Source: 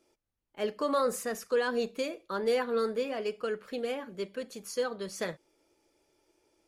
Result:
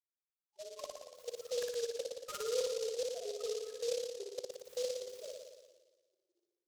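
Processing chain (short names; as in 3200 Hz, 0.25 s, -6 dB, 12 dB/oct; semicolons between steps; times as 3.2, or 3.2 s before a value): opening faded in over 1.57 s; loudest bins only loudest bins 1; LPF 3700 Hz 6 dB/oct; level quantiser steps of 20 dB; limiter -42.5 dBFS, peak gain reduction 7 dB; inverse Chebyshev high-pass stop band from 220 Hz, stop band 50 dB; flipped gate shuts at -48 dBFS, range -25 dB; on a send: flutter echo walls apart 9.9 m, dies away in 1.3 s; on the sum: noise-modulated delay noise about 4800 Hz, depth 0.1 ms; gain +17.5 dB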